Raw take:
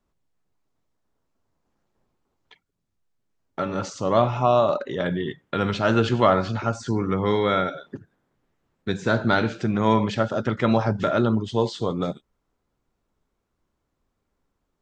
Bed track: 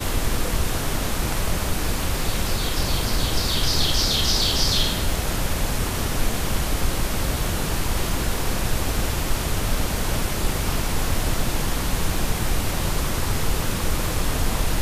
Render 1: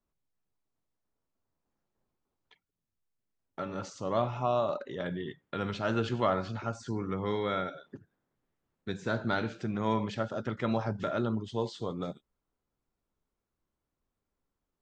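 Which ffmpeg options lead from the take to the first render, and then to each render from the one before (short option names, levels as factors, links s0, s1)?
-af "volume=0.316"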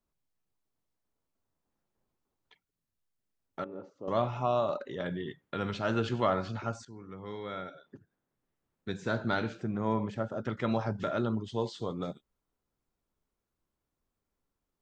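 -filter_complex "[0:a]asettb=1/sr,asplit=3[s0][s1][s2];[s0]atrim=end=3.644[s3];[s1]atrim=start=3.64:end=4.08,asetpts=PTS-STARTPTS,afade=t=in:d=0.004:c=qsin,afade=t=out:st=0.436:d=0.004:c=qsin,bandpass=f=390:t=q:w=1.9[s4];[s2]atrim=start=4.076[s5];[s3][s4]acrossfade=d=0.004:c1=hsin:c2=qsin[s6];[s6][s5]acrossfade=d=0.004:c1=qsin:c2=hsin,asettb=1/sr,asplit=3[s7][s8][s9];[s7]atrim=end=9.604[s10];[s8]atrim=start=9.6:end=10.45,asetpts=PTS-STARTPTS,afade=t=in:d=0.004:c=qsin,afade=t=out:st=0.846:d=0.004:c=qsin,equalizer=f=4100:t=o:w=2.1:g=-11.5[s11];[s9]atrim=start=10.446[s12];[s10][s11]acrossfade=d=0.004:c1=hsin:c2=qsin[s13];[s13][s12]acrossfade=d=0.004:c1=qsin:c2=hsin,asplit=2[s14][s15];[s14]atrim=end=6.85,asetpts=PTS-STARTPTS,afade=t=out:st=6.846:d=0.004:c=hsin:silence=0.158489[s16];[s15]atrim=start=6.85,asetpts=PTS-STARTPTS,afade=t=in:d=2.15:silence=0.158489[s17];[s16][s17]concat=n=2:v=0:a=1"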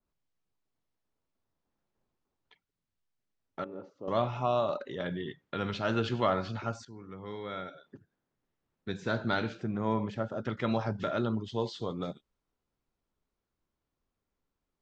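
-af "lowpass=5500,adynamicequalizer=threshold=0.00562:dfrequency=2400:dqfactor=0.7:tfrequency=2400:tqfactor=0.7:attack=5:release=100:ratio=0.375:range=2:mode=boostabove:tftype=highshelf"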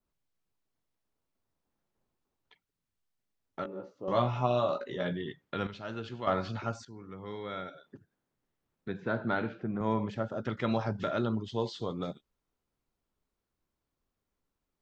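-filter_complex "[0:a]asettb=1/sr,asplit=3[s0][s1][s2];[s0]atrim=end=3.634[s3];[s1]atrim=start=3.63:end=5.13,asetpts=PTS-STARTPTS,afade=t=in:d=0.004:c=qsin,afade=t=out:st=1.496:d=0.004:c=qsin,asplit=2[s4][s5];[s5]adelay=16,volume=0.631[s6];[s4][s6]amix=inputs=2:normalize=0,atrim=end_sample=66150[s7];[s2]atrim=start=5.126[s8];[s3][s7]acrossfade=d=0.004:c1=hsin:c2=qsin[s9];[s9][s8]acrossfade=d=0.004:c1=qsin:c2=hsin,asettb=1/sr,asplit=3[s10][s11][s12];[s10]atrim=end=8.884[s13];[s11]atrim=start=8.88:end=9.81,asetpts=PTS-STARTPTS,afade=t=in:d=0.004:c=qsin,afade=t=out:st=0.926:d=0.004:c=qsin,highpass=110,lowpass=2100[s14];[s12]atrim=start=9.806[s15];[s13][s14]acrossfade=d=0.004:c1=hsin:c2=qsin[s16];[s16][s15]acrossfade=d=0.004:c1=qsin:c2=hsin,asplit=3[s17][s18][s19];[s17]atrim=end=5.672[s20];[s18]atrim=start=5.668:end=6.272,asetpts=PTS-STARTPTS,volume=0.335[s21];[s19]atrim=start=6.268[s22];[s20][s21]acrossfade=d=0.004:c1=hsin:c2=hsin[s23];[s23][s22]acrossfade=d=0.004:c1=hsin:c2=hsin"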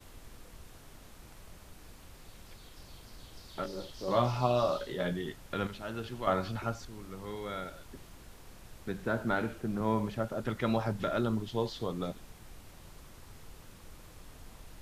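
-filter_complex "[1:a]volume=0.0376[s0];[0:a][s0]amix=inputs=2:normalize=0"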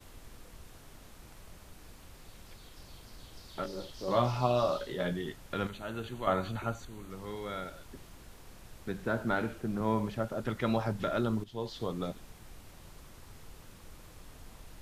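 -filter_complex "[0:a]asettb=1/sr,asplit=3[s0][s1][s2];[s0]atrim=end=5.694[s3];[s1]atrim=start=5.69:end=7.1,asetpts=PTS-STARTPTS,afade=t=in:d=0.004:c=qsin,afade=t=out:st=1.406:d=0.004:c=qsin,asuperstop=centerf=5200:order=4:qfactor=3.9[s4];[s2]atrim=start=7.096[s5];[s3][s4]acrossfade=d=0.004:c1=hsin:c2=qsin[s6];[s6][s5]acrossfade=d=0.004:c1=qsin:c2=hsin,asplit=2[s7][s8];[s7]atrim=end=11.44,asetpts=PTS-STARTPTS,afade=t=out:st=11.436:d=0.004:c=hsin:silence=0.223872[s9];[s8]atrim=start=11.44,asetpts=PTS-STARTPTS,afade=t=in:d=0.4:silence=0.223872[s10];[s9][s10]concat=n=2:v=0:a=1"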